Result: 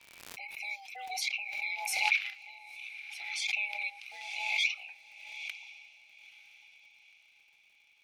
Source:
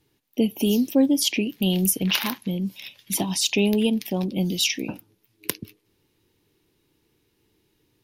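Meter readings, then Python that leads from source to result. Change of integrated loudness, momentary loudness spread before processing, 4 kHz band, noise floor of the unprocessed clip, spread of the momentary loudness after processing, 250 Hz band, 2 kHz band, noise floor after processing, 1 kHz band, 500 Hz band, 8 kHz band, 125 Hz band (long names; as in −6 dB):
−10.0 dB, 12 LU, −10.5 dB, −70 dBFS, 19 LU, below −40 dB, +1.5 dB, −65 dBFS, −3.0 dB, −30.0 dB, −14.5 dB, below −40 dB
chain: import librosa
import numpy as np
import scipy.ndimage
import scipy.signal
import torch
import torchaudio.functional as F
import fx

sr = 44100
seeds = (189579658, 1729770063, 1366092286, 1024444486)

p1 = fx.band_invert(x, sr, width_hz=1000)
p2 = fx.ladder_bandpass(p1, sr, hz=2500.0, resonance_pct=75)
p3 = fx.dmg_crackle(p2, sr, seeds[0], per_s=120.0, level_db=-57.0)
p4 = p3 + fx.echo_diffused(p3, sr, ms=938, feedback_pct=48, wet_db=-14, dry=0)
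p5 = fx.pre_swell(p4, sr, db_per_s=41.0)
y = p5 * 10.0 ** (-3.0 / 20.0)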